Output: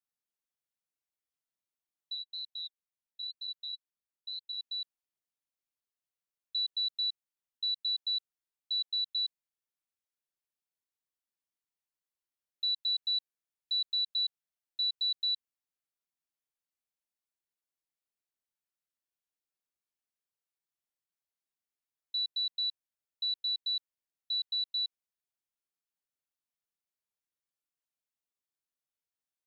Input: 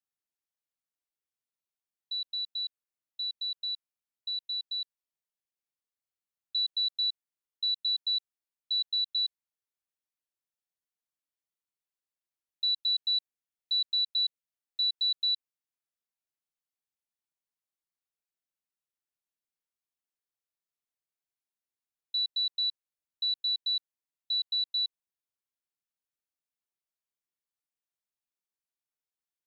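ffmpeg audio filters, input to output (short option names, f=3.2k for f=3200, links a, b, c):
-filter_complex "[0:a]asplit=3[a][b][c];[a]afade=t=out:st=2.14:d=0.02[d];[b]flanger=delay=0.2:depth=6.7:regen=18:speed=2:shape=sinusoidal,afade=t=in:st=2.14:d=0.02,afade=t=out:st=4.57:d=0.02[e];[c]afade=t=in:st=4.57:d=0.02[f];[d][e][f]amix=inputs=3:normalize=0,volume=-3dB"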